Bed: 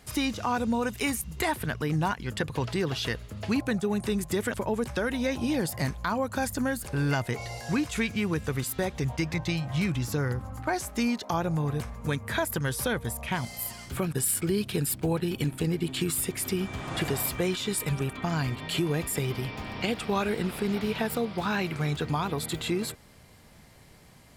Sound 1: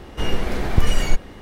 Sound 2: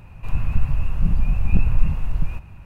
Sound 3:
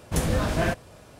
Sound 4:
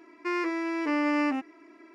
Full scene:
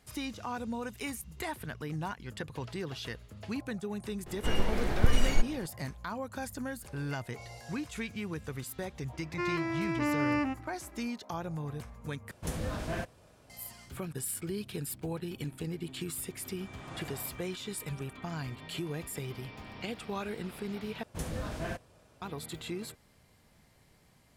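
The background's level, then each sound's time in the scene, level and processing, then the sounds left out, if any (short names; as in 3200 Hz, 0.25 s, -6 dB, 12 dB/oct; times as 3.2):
bed -9.5 dB
4.26 add 1 -7 dB
9.13 add 4 -3.5 dB
12.31 replace with 3 -11 dB
21.03 replace with 3 -12.5 dB
not used: 2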